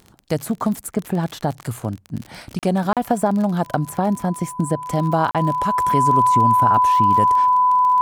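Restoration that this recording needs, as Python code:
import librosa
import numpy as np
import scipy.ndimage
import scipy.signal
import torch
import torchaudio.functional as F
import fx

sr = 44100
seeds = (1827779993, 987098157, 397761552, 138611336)

y = fx.fix_declick_ar(x, sr, threshold=6.5)
y = fx.notch(y, sr, hz=1000.0, q=30.0)
y = fx.fix_interpolate(y, sr, at_s=(2.59, 2.93, 5.31), length_ms=37.0)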